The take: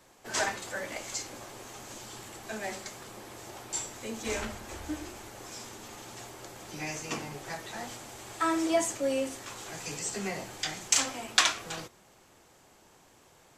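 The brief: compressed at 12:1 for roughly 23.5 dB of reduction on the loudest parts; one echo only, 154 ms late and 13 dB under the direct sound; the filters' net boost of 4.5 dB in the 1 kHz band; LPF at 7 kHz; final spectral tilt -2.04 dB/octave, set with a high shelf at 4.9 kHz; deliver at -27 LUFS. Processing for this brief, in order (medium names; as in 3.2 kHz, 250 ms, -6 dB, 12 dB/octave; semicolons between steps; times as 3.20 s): low-pass 7 kHz; peaking EQ 1 kHz +5.5 dB; treble shelf 4.9 kHz +8.5 dB; compression 12:1, threshold -42 dBFS; delay 154 ms -13 dB; trim +17.5 dB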